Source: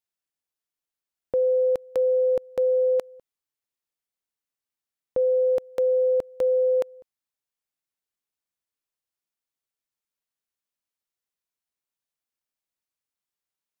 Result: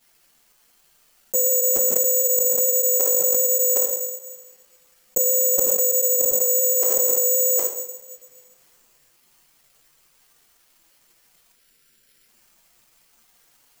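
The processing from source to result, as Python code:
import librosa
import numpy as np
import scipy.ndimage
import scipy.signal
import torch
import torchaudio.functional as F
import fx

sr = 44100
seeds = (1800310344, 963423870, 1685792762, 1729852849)

p1 = fx.chorus_voices(x, sr, voices=6, hz=0.48, base_ms=10, depth_ms=4.6, mix_pct=70)
p2 = fx.spec_box(p1, sr, start_s=11.52, length_s=0.77, low_hz=580.0, high_hz=1300.0, gain_db=-11)
p3 = p2 + fx.echo_single(p2, sr, ms=762, db=-19.5, dry=0)
p4 = fx.rev_double_slope(p3, sr, seeds[0], early_s=0.66, late_s=1.8, knee_db=-18, drr_db=5.0)
p5 = (np.kron(scipy.signal.resample_poly(p4, 1, 6), np.eye(6)[0]) * 6)[:len(p4)]
p6 = fx.env_flatten(p5, sr, amount_pct=100)
y = F.gain(torch.from_numpy(p6), -8.5).numpy()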